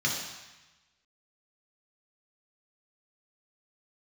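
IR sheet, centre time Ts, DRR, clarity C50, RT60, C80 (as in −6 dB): 55 ms, −3.0 dB, 2.5 dB, 1.1 s, 4.5 dB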